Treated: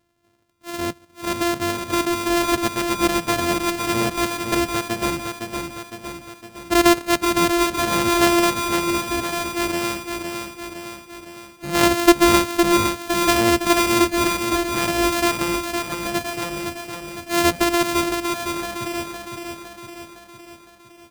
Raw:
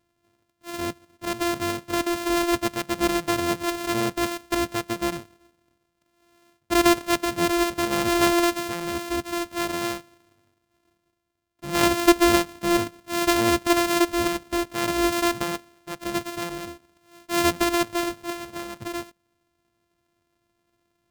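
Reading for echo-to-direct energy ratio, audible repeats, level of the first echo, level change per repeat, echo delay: -4.0 dB, 6, -5.5 dB, -5.0 dB, 0.51 s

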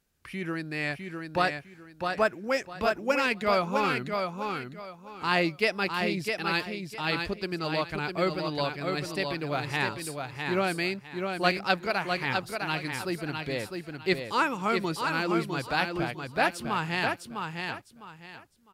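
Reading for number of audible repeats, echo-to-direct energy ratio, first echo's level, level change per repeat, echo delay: 3, -4.5 dB, -5.0 dB, -12.0 dB, 0.655 s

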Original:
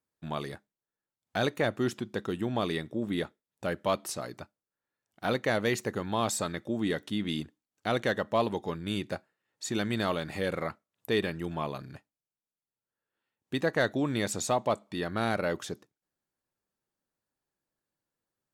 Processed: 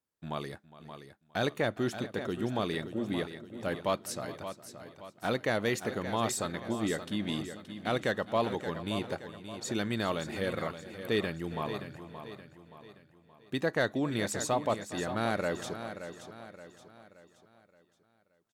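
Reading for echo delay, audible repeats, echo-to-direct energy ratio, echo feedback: 0.411 s, 6, -9.0 dB, no steady repeat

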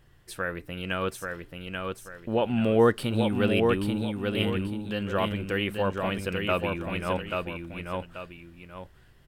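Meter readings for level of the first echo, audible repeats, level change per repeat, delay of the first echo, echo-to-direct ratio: -4.0 dB, 2, -9.5 dB, 0.835 s, -3.5 dB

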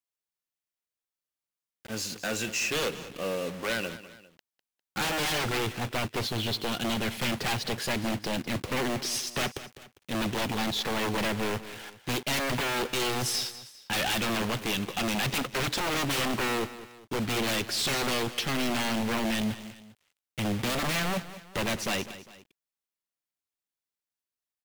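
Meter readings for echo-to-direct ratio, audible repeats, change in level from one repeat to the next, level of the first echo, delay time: -14.0 dB, 2, -7.0 dB, -15.0 dB, 0.201 s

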